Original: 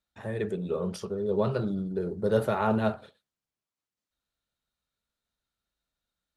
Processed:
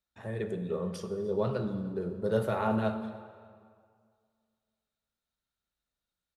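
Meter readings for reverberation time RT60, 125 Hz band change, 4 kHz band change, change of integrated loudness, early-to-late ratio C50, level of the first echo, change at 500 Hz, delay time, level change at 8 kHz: 2.0 s, -2.5 dB, -3.5 dB, -3.5 dB, 9.5 dB, -22.5 dB, -3.0 dB, 0.297 s, n/a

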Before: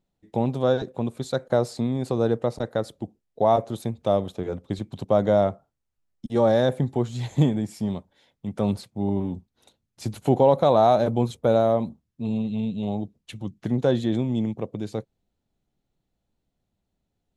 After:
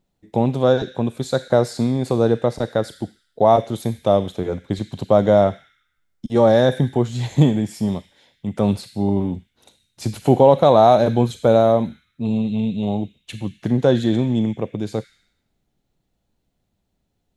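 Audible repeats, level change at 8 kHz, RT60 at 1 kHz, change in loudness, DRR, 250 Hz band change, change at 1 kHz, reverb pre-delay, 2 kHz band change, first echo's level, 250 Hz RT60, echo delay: none, n/a, 0.85 s, +5.5 dB, 9.0 dB, +5.5 dB, +5.5 dB, 29 ms, +6.0 dB, none, 0.85 s, none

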